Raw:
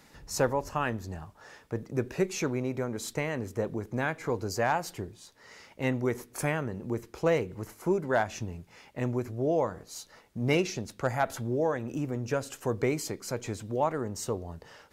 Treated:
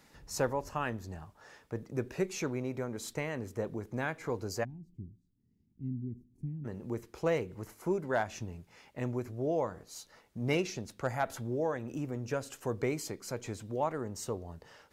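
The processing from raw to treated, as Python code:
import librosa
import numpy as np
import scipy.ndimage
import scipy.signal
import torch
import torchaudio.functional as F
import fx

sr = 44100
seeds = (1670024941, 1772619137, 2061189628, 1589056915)

y = fx.cheby2_lowpass(x, sr, hz=510.0, order=4, stop_db=40, at=(4.63, 6.64), fade=0.02)
y = y * librosa.db_to_amplitude(-4.5)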